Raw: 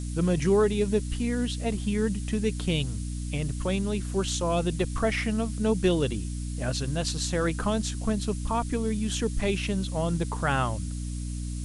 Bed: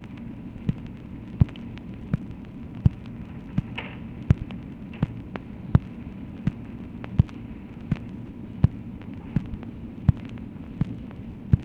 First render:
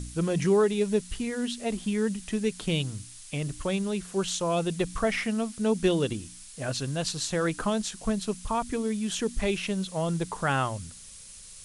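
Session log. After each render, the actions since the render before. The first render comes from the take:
hum removal 60 Hz, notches 5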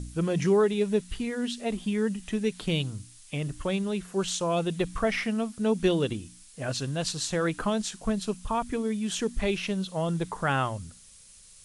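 noise reduction from a noise print 6 dB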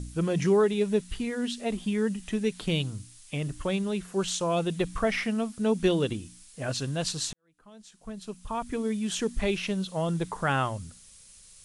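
0:07.33–0:08.87: fade in quadratic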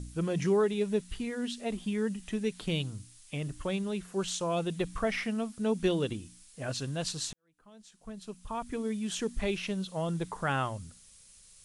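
level −4 dB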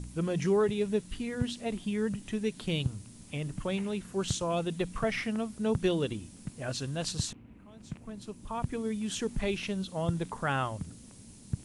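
mix in bed −15 dB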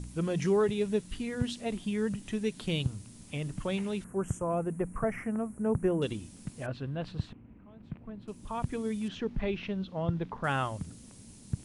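0:04.04–0:06.02: Butterworth band-reject 4,100 Hz, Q 0.53
0:06.66–0:08.28: high-frequency loss of the air 460 metres
0:09.08–0:10.44: high-frequency loss of the air 280 metres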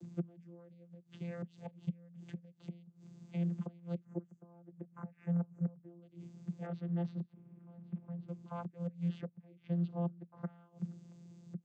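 gate with flip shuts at −24 dBFS, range −26 dB
channel vocoder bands 16, saw 172 Hz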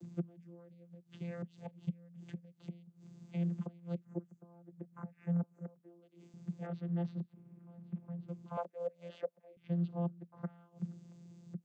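0:05.43–0:06.34: high-pass filter 320 Hz
0:08.57–0:09.57: high-pass with resonance 570 Hz, resonance Q 4.8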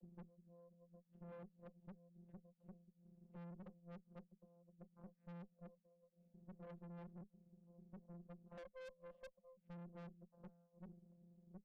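pair of resonant band-passes 330 Hz, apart 1.4 octaves
tube saturation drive 52 dB, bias 0.75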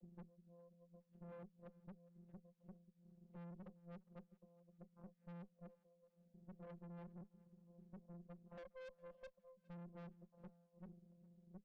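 high-frequency loss of the air 70 metres
feedback echo with a high-pass in the loop 409 ms, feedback 35%, high-pass 430 Hz, level −23 dB

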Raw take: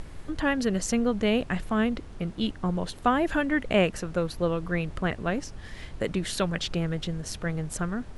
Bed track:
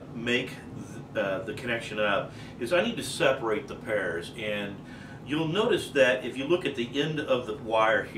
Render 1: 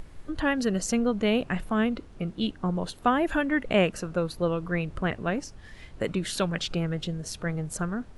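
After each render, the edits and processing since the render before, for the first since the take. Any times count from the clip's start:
noise reduction from a noise print 6 dB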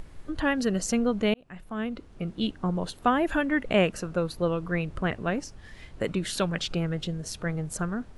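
0:01.34–0:02.36: fade in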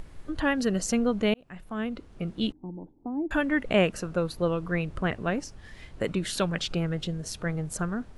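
0:02.52–0:03.31: formant resonators in series u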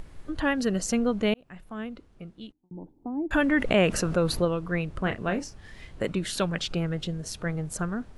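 0:01.28–0:02.71: fade out linear
0:03.33–0:04.45: envelope flattener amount 50%
0:05.03–0:06.07: double-tracking delay 32 ms −9 dB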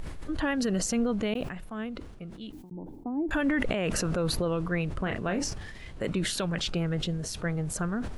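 brickwall limiter −19 dBFS, peak gain reduction 11 dB
level that may fall only so fast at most 44 dB per second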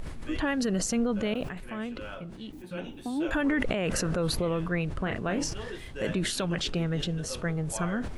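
mix in bed track −15.5 dB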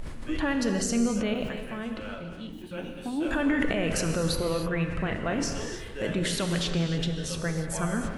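reverb whose tail is shaped and stops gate 330 ms flat, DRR 4.5 dB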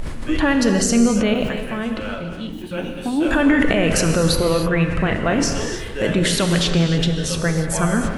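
level +10 dB
brickwall limiter −3 dBFS, peak gain reduction 2 dB

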